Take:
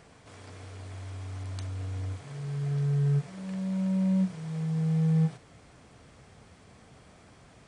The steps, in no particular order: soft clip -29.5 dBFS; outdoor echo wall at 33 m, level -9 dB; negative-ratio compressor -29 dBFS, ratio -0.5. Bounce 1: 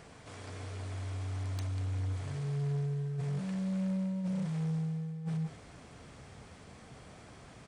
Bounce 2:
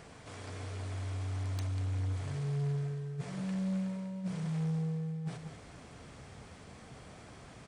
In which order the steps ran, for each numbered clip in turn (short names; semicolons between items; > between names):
outdoor echo > negative-ratio compressor > soft clip; negative-ratio compressor > outdoor echo > soft clip